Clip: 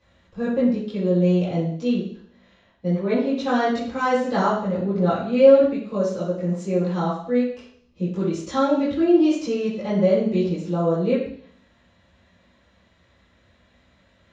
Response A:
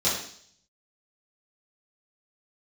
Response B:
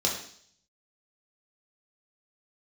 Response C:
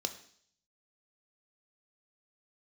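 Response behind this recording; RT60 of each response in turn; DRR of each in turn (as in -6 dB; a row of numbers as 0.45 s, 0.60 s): A; 0.60 s, 0.60 s, 0.60 s; -11.5 dB, -2.5 dB, 7.0 dB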